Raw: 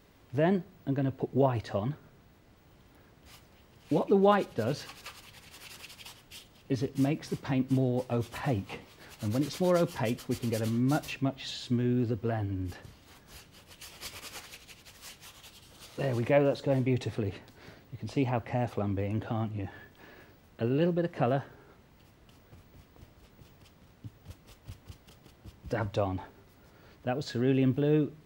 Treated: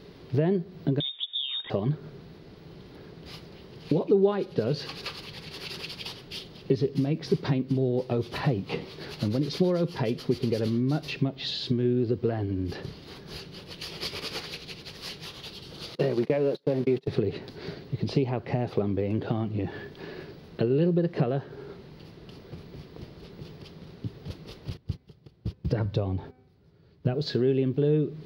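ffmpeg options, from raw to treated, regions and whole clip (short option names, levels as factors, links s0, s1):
-filter_complex "[0:a]asettb=1/sr,asplit=3[s0][s1][s2];[s0]atrim=end=1.004[s3];[s1]atrim=start=1:end=1.7,asetpts=PTS-STARTPTS,afade=t=in:d=0.004:c=qsin,afade=t=out:st=0.696:d=0.004:c=qsin,lowpass=f=3200:t=q:w=0.5098,lowpass=f=3200:t=q:w=0.6013,lowpass=f=3200:t=q:w=0.9,lowpass=f=3200:t=q:w=2.563,afreqshift=-3800,acompressor=threshold=0.0316:ratio=2:attack=3.2:release=140:knee=1:detection=peak[s4];[s2]atrim=start=1.696[s5];[s3][s4]acrossfade=d=0.004:c1=hsin:c2=qsin[s6];[s6][s5]acrossfade=d=0.004:c1=qsin:c2=hsin,asettb=1/sr,asplit=3[s7][s8][s9];[s7]atrim=end=15.954[s10];[s8]atrim=start=15.95:end=17.08,asetpts=PTS-STARTPTS,afade=t=in:d=0.004:c=qsin,afade=t=out:st=1.126:d=0.004:c=qsin,aeval=exprs='val(0)+0.5*0.0141*sgn(val(0))':c=same,highpass=f=150:w=0.5412,highpass=f=150:w=1.3066,agate=range=0.0126:threshold=0.0224:ratio=16:release=100:detection=peak[s11];[s9]atrim=start=17.076[s12];[s10][s11]acrossfade=d=0.004:c1=hsin:c2=qsin[s13];[s13][s12]acrossfade=d=0.004:c1=qsin:c2=hsin,asettb=1/sr,asplit=3[s14][s15][s16];[s14]atrim=end=24.774[s17];[s15]atrim=start=24.77:end=27.14,asetpts=PTS-STARTPTS,afade=t=in:d=0.004:c=qsin,afade=t=out:st=2.366:d=0.004:c=qsin,agate=range=0.1:threshold=0.00251:ratio=16:release=100:detection=peak,equalizer=f=87:w=0.74:g=12,bandreject=f=253.9:t=h:w=4,bandreject=f=507.8:t=h:w=4,bandreject=f=761.7:t=h:w=4,bandreject=f=1015.6:t=h:w=4,bandreject=f=1269.5:t=h:w=4,bandreject=f=1523.4:t=h:w=4,bandreject=f=1777.3:t=h:w=4,bandreject=f=2031.2:t=h:w=4,bandreject=f=2285.1:t=h:w=4,bandreject=f=2539:t=h:w=4[s18];[s16]atrim=start=27.136[s19];[s17][s18]acrossfade=d=0.004:c1=hsin:c2=qsin[s20];[s20][s19]acrossfade=d=0.004:c1=qsin:c2=hsin,highshelf=f=6100:t=q:w=3:g=-11,acompressor=threshold=0.0158:ratio=6,equalizer=f=160:t=o:w=0.67:g=11,equalizer=f=400:t=o:w=0.67:g=12,equalizer=f=10000:t=o:w=0.67:g=10,volume=2"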